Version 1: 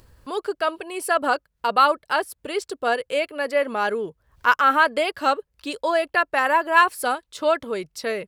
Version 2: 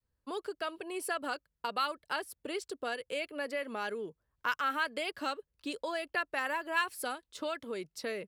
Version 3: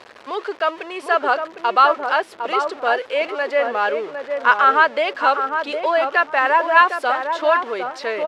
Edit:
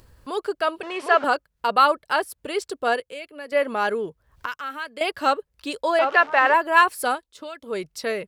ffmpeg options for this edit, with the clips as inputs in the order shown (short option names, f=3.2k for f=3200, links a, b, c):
-filter_complex "[2:a]asplit=2[a][b];[1:a]asplit=3[c][d][e];[0:a]asplit=6[f][g][h][i][j][k];[f]atrim=end=0.832[l];[a]atrim=start=0.828:end=1.242[m];[g]atrim=start=1.238:end=3.002[n];[c]atrim=start=2.998:end=3.522[o];[h]atrim=start=3.518:end=4.462[p];[d]atrim=start=4.458:end=5.012[q];[i]atrim=start=5.008:end=5.992[r];[b]atrim=start=5.988:end=6.542[s];[j]atrim=start=6.538:end=7.32[t];[e]atrim=start=7.16:end=7.76[u];[k]atrim=start=7.6[v];[l][m]acrossfade=d=0.004:c1=hsin:c2=hsin[w];[w][n]acrossfade=d=0.004:c1=hsin:c2=hsin[x];[x][o]acrossfade=d=0.004:c1=hsin:c2=hsin[y];[y][p]acrossfade=d=0.004:c1=hsin:c2=hsin[z];[z][q]acrossfade=d=0.004:c1=hsin:c2=hsin[aa];[aa][r]acrossfade=d=0.004:c1=hsin:c2=hsin[ab];[ab][s]acrossfade=d=0.004:c1=hsin:c2=hsin[ac];[ac][t]acrossfade=d=0.004:c1=hsin:c2=hsin[ad];[ad][u]acrossfade=d=0.16:c1=tri:c2=tri[ae];[ae][v]acrossfade=d=0.16:c1=tri:c2=tri"